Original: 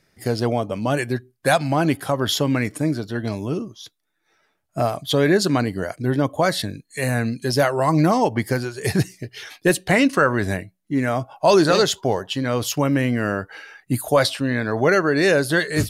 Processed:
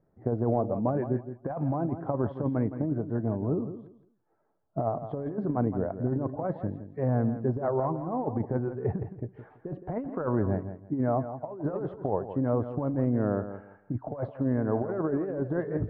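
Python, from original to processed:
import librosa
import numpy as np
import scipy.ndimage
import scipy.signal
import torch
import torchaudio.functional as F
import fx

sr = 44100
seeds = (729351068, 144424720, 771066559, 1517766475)

p1 = scipy.signal.sosfilt(scipy.signal.butter(4, 1000.0, 'lowpass', fs=sr, output='sos'), x)
p2 = fx.over_compress(p1, sr, threshold_db=-21.0, ratio=-0.5)
p3 = p2 + fx.echo_feedback(p2, sr, ms=166, feedback_pct=22, wet_db=-11, dry=0)
y = p3 * 10.0 ** (-6.0 / 20.0)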